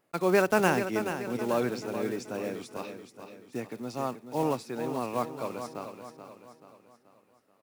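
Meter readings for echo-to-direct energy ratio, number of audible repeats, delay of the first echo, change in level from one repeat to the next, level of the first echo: −8.0 dB, 4, 432 ms, −6.5 dB, −9.0 dB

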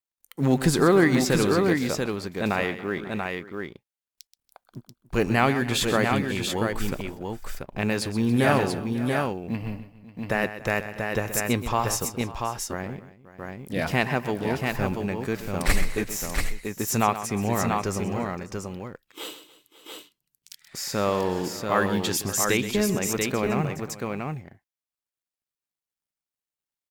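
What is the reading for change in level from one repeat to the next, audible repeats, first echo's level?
repeats not evenly spaced, 4, −12.5 dB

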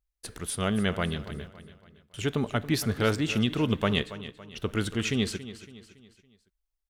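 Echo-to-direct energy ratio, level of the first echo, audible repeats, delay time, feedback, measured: −13.5 dB, −14.5 dB, 3, 280 ms, 44%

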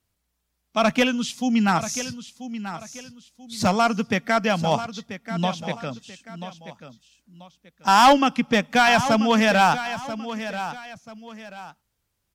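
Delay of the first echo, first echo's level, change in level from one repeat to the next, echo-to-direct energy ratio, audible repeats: 986 ms, −12.0 dB, −10.0 dB, −11.5 dB, 2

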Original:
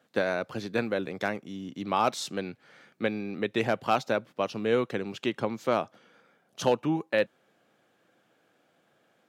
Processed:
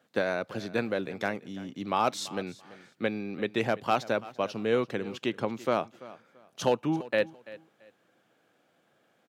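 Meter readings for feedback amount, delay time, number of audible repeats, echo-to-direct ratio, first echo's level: 24%, 337 ms, 2, −18.0 dB, −18.5 dB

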